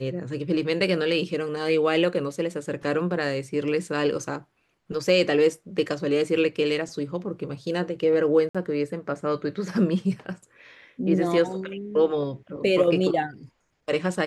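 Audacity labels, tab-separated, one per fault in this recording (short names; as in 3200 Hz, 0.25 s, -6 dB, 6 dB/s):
8.490000	8.550000	gap 56 ms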